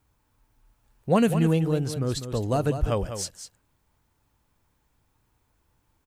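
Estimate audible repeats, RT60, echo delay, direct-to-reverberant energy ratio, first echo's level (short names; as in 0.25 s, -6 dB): 1, none, 0.199 s, none, -9.5 dB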